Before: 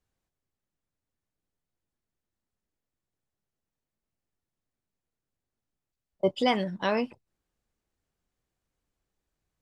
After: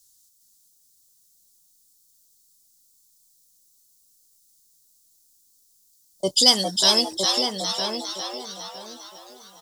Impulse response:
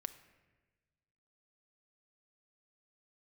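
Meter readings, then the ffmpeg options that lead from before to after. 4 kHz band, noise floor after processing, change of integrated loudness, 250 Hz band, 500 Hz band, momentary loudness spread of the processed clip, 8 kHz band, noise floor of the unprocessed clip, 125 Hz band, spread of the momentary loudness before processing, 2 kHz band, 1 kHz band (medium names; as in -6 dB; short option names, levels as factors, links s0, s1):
+20.5 dB, -61 dBFS, +8.0 dB, +2.0 dB, +2.5 dB, 20 LU, no reading, under -85 dBFS, +1.5 dB, 5 LU, +1.0 dB, +4.0 dB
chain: -filter_complex "[0:a]asplit=2[s0][s1];[s1]asplit=6[s2][s3][s4][s5][s6][s7];[s2]adelay=405,afreqshift=140,volume=0.562[s8];[s3]adelay=810,afreqshift=280,volume=0.269[s9];[s4]adelay=1215,afreqshift=420,volume=0.129[s10];[s5]adelay=1620,afreqshift=560,volume=0.0624[s11];[s6]adelay=2025,afreqshift=700,volume=0.0299[s12];[s7]adelay=2430,afreqshift=840,volume=0.0143[s13];[s8][s9][s10][s11][s12][s13]amix=inputs=6:normalize=0[s14];[s0][s14]amix=inputs=2:normalize=0,aexciter=amount=15.9:drive=9.4:freq=3900,asplit=2[s15][s16];[s16]adelay=961,lowpass=f=2200:p=1,volume=0.562,asplit=2[s17][s18];[s18]adelay=961,lowpass=f=2200:p=1,volume=0.25,asplit=2[s19][s20];[s20]adelay=961,lowpass=f=2200:p=1,volume=0.25[s21];[s17][s19][s21]amix=inputs=3:normalize=0[s22];[s15][s22]amix=inputs=2:normalize=0"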